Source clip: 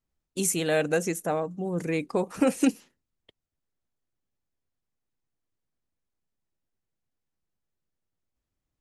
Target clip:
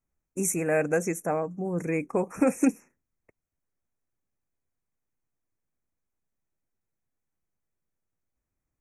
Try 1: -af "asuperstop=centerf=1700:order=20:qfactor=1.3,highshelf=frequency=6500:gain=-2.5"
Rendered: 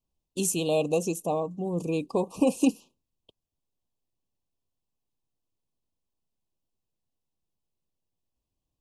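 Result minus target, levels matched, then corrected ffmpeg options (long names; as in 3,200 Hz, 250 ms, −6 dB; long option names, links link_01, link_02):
4,000 Hz band +15.0 dB
-af "asuperstop=centerf=3800:order=20:qfactor=1.3,highshelf=frequency=6500:gain=-2.5"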